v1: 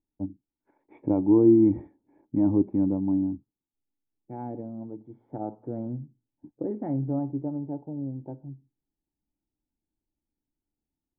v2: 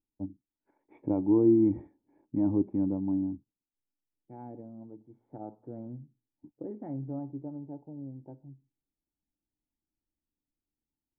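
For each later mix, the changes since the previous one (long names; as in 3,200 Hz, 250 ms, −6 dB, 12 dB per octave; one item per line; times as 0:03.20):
first voice −4.5 dB
second voice −8.5 dB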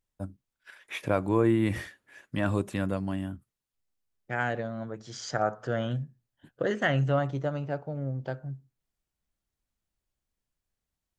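first voice −8.0 dB
master: remove formant resonators in series u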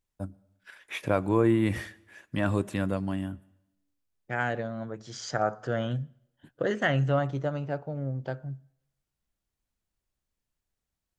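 reverb: on, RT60 0.90 s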